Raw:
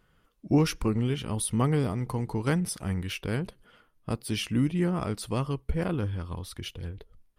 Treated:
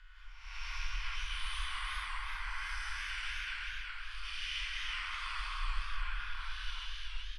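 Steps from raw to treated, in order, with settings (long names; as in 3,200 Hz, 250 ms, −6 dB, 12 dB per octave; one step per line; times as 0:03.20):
spectrum smeared in time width 364 ms
inverse Chebyshev band-stop filter 100–530 Hz, stop band 60 dB
reversed playback
upward compression, threshold −51 dBFS
reversed playback
low-pass filter 4,600 Hz 12 dB per octave
high-shelf EQ 2,200 Hz −10.5 dB
comb filter 2 ms, depth 31%
brickwall limiter −42.5 dBFS, peak gain reduction 7 dB
reverb whose tail is shaped and stops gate 210 ms rising, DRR −6 dB
feedback echo with a swinging delay time 376 ms, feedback 34%, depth 108 cents, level −3 dB
level +7 dB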